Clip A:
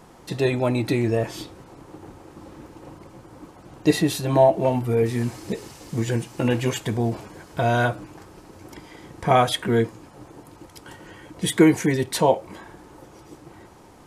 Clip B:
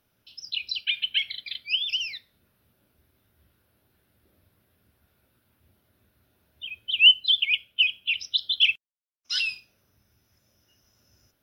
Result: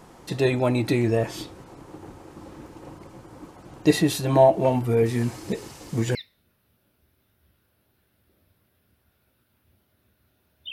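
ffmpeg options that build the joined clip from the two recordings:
-filter_complex "[0:a]apad=whole_dur=10.72,atrim=end=10.72,atrim=end=6.152[a];[1:a]atrim=start=2.108:end=6.68[b];[a][b]acrossfade=d=0.004:c1=hsin:c2=hsin"

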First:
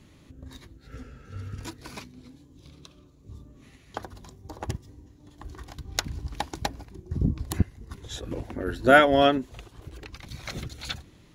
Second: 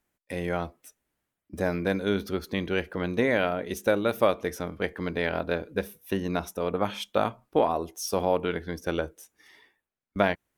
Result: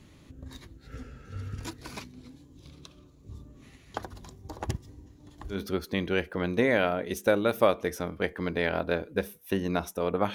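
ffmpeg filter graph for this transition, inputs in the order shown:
-filter_complex "[0:a]apad=whole_dur=10.34,atrim=end=10.34,atrim=end=5.61,asetpts=PTS-STARTPTS[a];[1:a]atrim=start=2.09:end=6.94,asetpts=PTS-STARTPTS[b];[a][b]acrossfade=d=0.12:c1=tri:c2=tri"

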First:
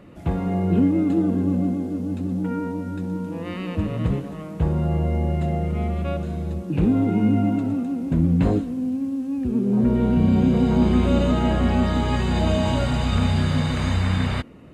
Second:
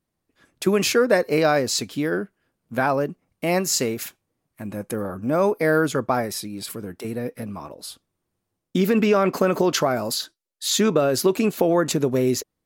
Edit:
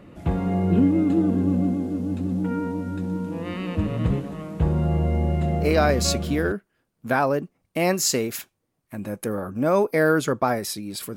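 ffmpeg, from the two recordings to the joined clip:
-filter_complex "[0:a]apad=whole_dur=11.16,atrim=end=11.16,atrim=end=6.52,asetpts=PTS-STARTPTS[a];[1:a]atrim=start=1.27:end=6.83,asetpts=PTS-STARTPTS[b];[a][b]acrossfade=d=0.92:c1=log:c2=log"

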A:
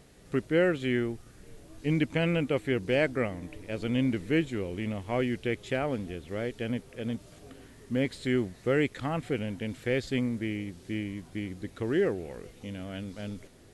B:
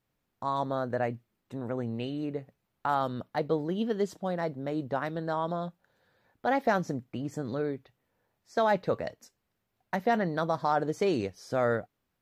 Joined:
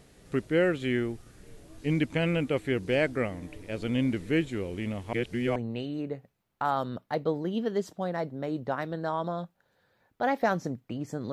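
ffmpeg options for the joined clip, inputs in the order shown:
-filter_complex "[0:a]apad=whole_dur=11.32,atrim=end=11.32,asplit=2[a][b];[a]atrim=end=5.132[c];[b]atrim=start=5.128:end=5.562,asetpts=PTS-STARTPTS,areverse[d];[1:a]atrim=start=1.798:end=7.56[e];[c][d]acrossfade=d=0.004:c1=hsin:c2=hsin[f];[f][e]acrossfade=d=0.004:c1=hsin:c2=hsin"

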